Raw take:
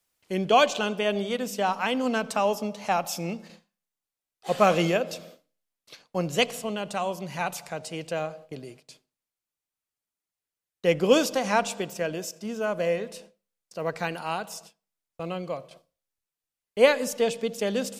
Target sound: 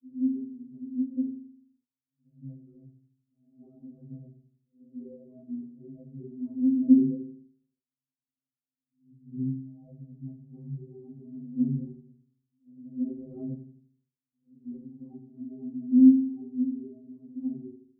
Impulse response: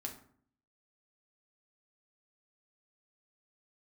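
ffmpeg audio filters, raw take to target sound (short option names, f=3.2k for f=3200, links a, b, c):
-filter_complex "[0:a]areverse[a];[1:a]atrim=start_sample=2205[b];[a][b]afir=irnorm=-1:irlink=0,dynaudnorm=f=530:g=9:m=11.5dB,asuperpass=centerf=190:order=8:qfactor=1.1,afftfilt=real='re*2.45*eq(mod(b,6),0)':imag='im*2.45*eq(mod(b,6),0)':win_size=2048:overlap=0.75"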